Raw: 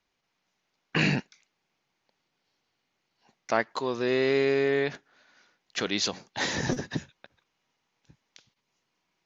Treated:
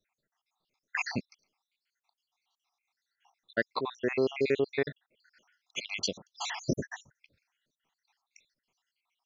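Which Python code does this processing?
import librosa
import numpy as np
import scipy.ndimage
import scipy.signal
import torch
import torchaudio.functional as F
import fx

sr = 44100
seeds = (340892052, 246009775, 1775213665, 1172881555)

y = fx.spec_dropout(x, sr, seeds[0], share_pct=74)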